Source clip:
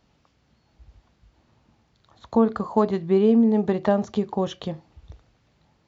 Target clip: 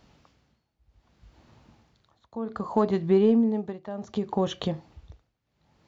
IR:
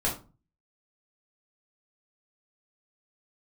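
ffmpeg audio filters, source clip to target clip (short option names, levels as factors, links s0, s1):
-filter_complex "[0:a]tremolo=f=0.65:d=0.93,aeval=exprs='0.335*(cos(1*acos(clip(val(0)/0.335,-1,1)))-cos(1*PI/2))+0.00531*(cos(5*acos(clip(val(0)/0.335,-1,1)))-cos(5*PI/2))':c=same,asettb=1/sr,asplit=3[s0][s1][s2];[s0]atrim=end=4.284[s3];[s1]atrim=start=4.28:end=4.69,asetpts=PTS-STARTPTS,afade=t=in:d=0.004:c=qsin,afade=t=out:st=0.406:d=0.004:c=qsin,bandreject=f=5100:w=9.7[s4];[s2]atrim=start=4.686[s5];[s3][s4]acrossfade=d=0.004:c1=hsin:c2=qsin[s6];[s6][s5]acrossfade=d=0.004:c1=qsin:c2=hsin,asplit=2[s7][s8];[s8]acompressor=threshold=0.0251:ratio=6,volume=1.41[s9];[s7][s9]amix=inputs=2:normalize=0,volume=0.708"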